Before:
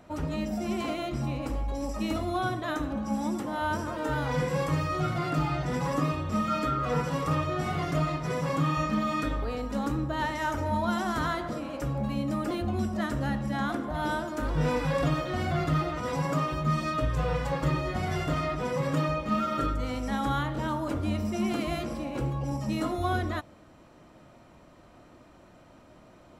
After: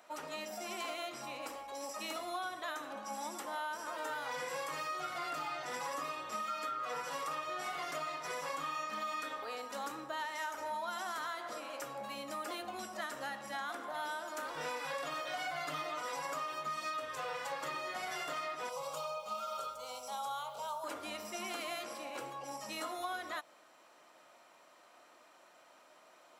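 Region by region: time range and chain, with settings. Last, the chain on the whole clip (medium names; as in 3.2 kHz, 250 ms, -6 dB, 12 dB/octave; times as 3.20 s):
15.26–16.03 s: peaking EQ 1.2 kHz +5 dB 0.25 oct + comb 6.8 ms, depth 93%
18.69–20.84 s: static phaser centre 750 Hz, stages 4 + word length cut 12-bit, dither none
whole clip: high-pass 720 Hz 12 dB/octave; treble shelf 5.6 kHz +5.5 dB; compression, threshold -34 dBFS; trim -2 dB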